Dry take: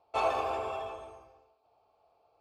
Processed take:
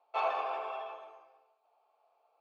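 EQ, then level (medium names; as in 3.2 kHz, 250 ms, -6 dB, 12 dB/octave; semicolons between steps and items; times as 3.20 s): band-pass 690–3600 Hz; distance through air 58 m; 0.0 dB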